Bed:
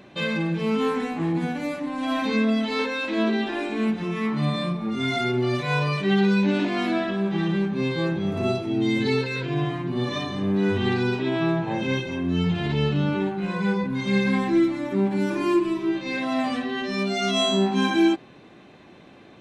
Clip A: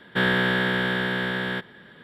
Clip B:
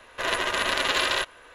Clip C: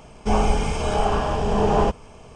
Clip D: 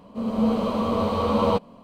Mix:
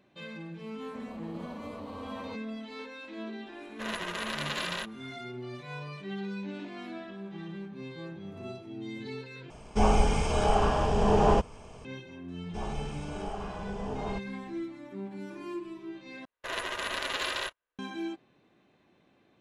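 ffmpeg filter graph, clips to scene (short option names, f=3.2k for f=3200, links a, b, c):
-filter_complex "[2:a]asplit=2[a][b];[3:a]asplit=2[c][d];[0:a]volume=-17dB[e];[4:a]acompressor=threshold=-27dB:ratio=6:attack=3.2:release=140:knee=1:detection=peak[f];[b]agate=range=-32dB:threshold=-38dB:ratio=16:release=100:detection=peak[g];[e]asplit=3[h][i][j];[h]atrim=end=9.504[k];[c]atrim=end=2.35,asetpts=PTS-STARTPTS,volume=-3.5dB[l];[i]atrim=start=11.846:end=16.254[m];[g]atrim=end=1.54,asetpts=PTS-STARTPTS,volume=-8.5dB[n];[j]atrim=start=17.786[o];[f]atrim=end=1.83,asetpts=PTS-STARTPTS,volume=-12dB,afade=t=in:d=0.004:c=hsin,afade=t=out:st=1.826:d=0.004:c=hsin,adelay=780[p];[a]atrim=end=1.54,asetpts=PTS-STARTPTS,volume=-10dB,afade=t=in:d=0.004:c=hsin,afade=t=out:st=1.536:d=0.004:c=hsin,adelay=159201S[q];[d]atrim=end=2.35,asetpts=PTS-STARTPTS,volume=-17dB,afade=t=in:d=0.004:c=hsin,afade=t=out:st=2.346:d=0.004:c=hsin,adelay=12280[r];[k][l]acrossfade=d=0.004:c1=hsin:c2=hsin[s];[s][m]acrossfade=d=0.004:c1=hsin:c2=hsin[t];[t][n]acrossfade=d=0.004:c1=hsin:c2=hsin[u];[u][o]acrossfade=d=0.004:c1=hsin:c2=hsin[v];[v][p][q][r]amix=inputs=4:normalize=0"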